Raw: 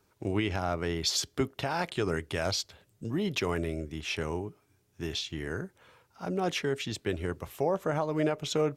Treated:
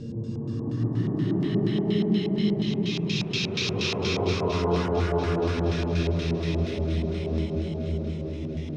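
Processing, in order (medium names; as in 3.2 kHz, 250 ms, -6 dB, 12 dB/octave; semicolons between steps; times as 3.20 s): chunks repeated in reverse 292 ms, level -11.5 dB; tone controls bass +8 dB, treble +5 dB; Paulstretch 9.8×, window 0.25 s, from 3.01 s; LFO low-pass square 4.2 Hz 790–4500 Hz; shuffle delay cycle 924 ms, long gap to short 3:1, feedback 45%, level -12.5 dB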